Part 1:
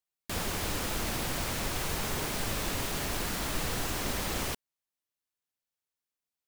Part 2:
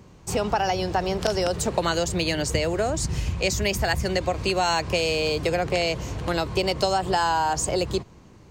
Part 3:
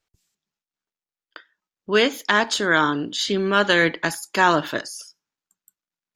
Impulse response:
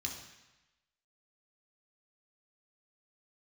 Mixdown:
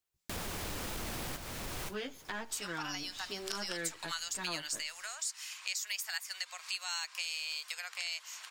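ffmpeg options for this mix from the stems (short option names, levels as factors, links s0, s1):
-filter_complex "[0:a]asoftclip=type=tanh:threshold=0.0422,volume=1.19[s0];[1:a]highpass=f=1200:w=0.5412,highpass=f=1200:w=1.3066,highshelf=f=3900:g=10,bandreject=f=6200:w=22,adelay=2250,volume=0.596[s1];[2:a]aeval=exprs='if(lt(val(0),0),0.447*val(0),val(0))':c=same,asplit=2[s2][s3];[s3]adelay=10.4,afreqshift=-1.7[s4];[s2][s4]amix=inputs=2:normalize=1,volume=0.299,asplit=2[s5][s6];[s6]apad=whole_len=285758[s7];[s0][s7]sidechaincompress=threshold=0.002:ratio=16:attack=7.6:release=827[s8];[s8][s1][s5]amix=inputs=3:normalize=0,acompressor=threshold=0.00794:ratio=2"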